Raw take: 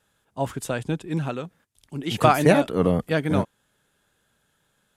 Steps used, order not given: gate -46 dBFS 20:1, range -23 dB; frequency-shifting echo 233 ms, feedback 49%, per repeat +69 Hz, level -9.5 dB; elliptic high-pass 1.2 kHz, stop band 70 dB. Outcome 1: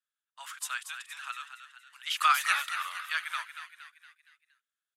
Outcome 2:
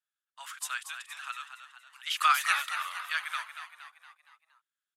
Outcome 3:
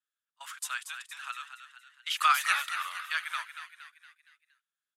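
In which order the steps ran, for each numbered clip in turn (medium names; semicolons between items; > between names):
gate > elliptic high-pass > frequency-shifting echo; gate > frequency-shifting echo > elliptic high-pass; elliptic high-pass > gate > frequency-shifting echo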